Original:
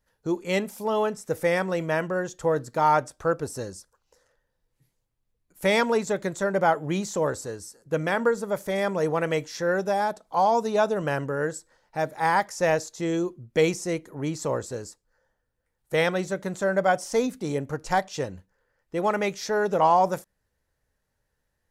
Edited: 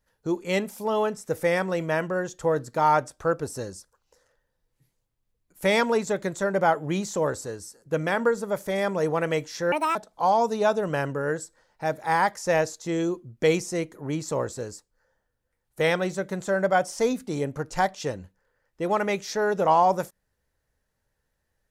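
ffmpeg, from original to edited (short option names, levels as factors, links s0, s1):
-filter_complex "[0:a]asplit=3[s0][s1][s2];[s0]atrim=end=9.724[s3];[s1]atrim=start=9.72:end=10.09,asetpts=PTS-STARTPTS,asetrate=69678,aresample=44100,atrim=end_sample=10327,asetpts=PTS-STARTPTS[s4];[s2]atrim=start=10.086[s5];[s3][s4]acrossfade=d=0.004:c1=hsin:c2=hsin[s6];[s6][s5]acrossfade=d=0.004:c1=hsin:c2=hsin"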